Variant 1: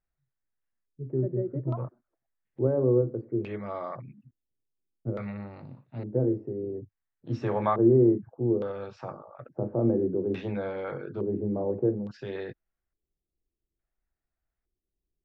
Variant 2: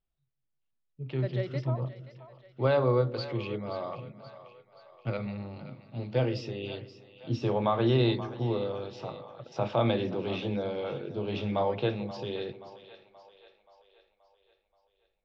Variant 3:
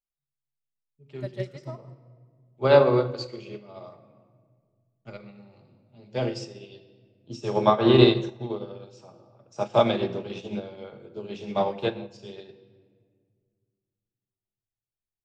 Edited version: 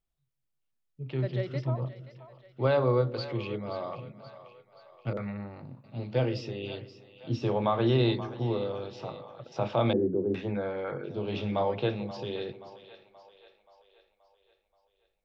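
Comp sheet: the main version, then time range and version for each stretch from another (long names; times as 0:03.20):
2
0:05.13–0:05.84: punch in from 1
0:09.93–0:11.04: punch in from 1
not used: 3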